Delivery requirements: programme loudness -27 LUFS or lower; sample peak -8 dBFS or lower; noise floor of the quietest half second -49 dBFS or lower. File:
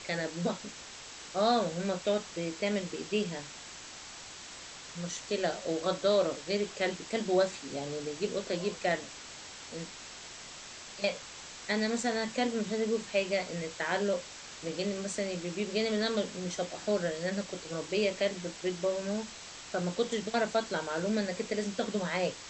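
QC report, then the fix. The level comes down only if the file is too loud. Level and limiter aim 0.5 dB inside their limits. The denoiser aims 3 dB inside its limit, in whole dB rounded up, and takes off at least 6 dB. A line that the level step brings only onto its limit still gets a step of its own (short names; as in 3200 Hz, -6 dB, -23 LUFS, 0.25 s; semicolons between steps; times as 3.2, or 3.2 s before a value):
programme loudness -33.0 LUFS: OK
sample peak -15.5 dBFS: OK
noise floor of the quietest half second -47 dBFS: fail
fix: denoiser 6 dB, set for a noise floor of -47 dBFS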